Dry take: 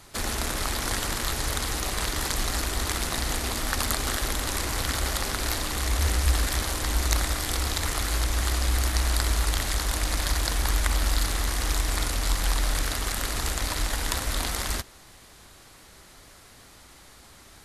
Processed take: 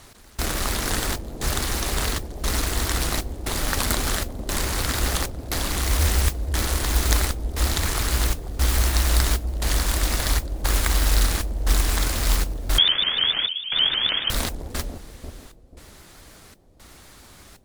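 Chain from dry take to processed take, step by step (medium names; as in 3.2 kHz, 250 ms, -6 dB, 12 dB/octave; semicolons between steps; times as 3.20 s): in parallel at -11 dB: sample-and-hold 38×; on the sum: trance gate "x..xxxxx" 117 bpm -24 dB; modulation noise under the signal 12 dB; on a send: bucket-brigade echo 489 ms, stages 2048, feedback 31%, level -6 dB; 12.78–14.30 s: on the sum: frequency inversion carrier 3.3 kHz; vibrato with a chosen wave saw up 6.6 Hz, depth 160 cents; trim +2 dB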